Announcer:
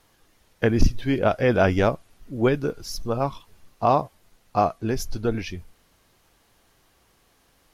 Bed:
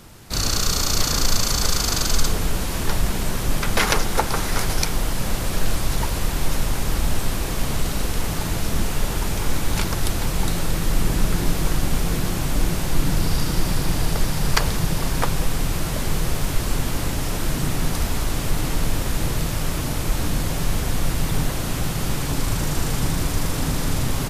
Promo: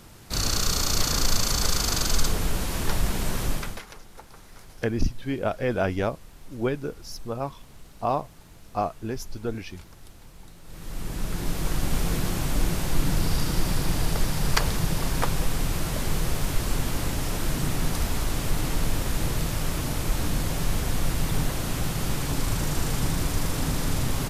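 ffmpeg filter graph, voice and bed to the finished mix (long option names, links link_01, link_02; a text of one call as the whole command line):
ffmpeg -i stem1.wav -i stem2.wav -filter_complex "[0:a]adelay=4200,volume=-6dB[link_01];[1:a]volume=18.5dB,afade=type=out:start_time=3.44:duration=0.38:silence=0.0794328,afade=type=in:start_time=10.63:duration=1.38:silence=0.0794328[link_02];[link_01][link_02]amix=inputs=2:normalize=0" out.wav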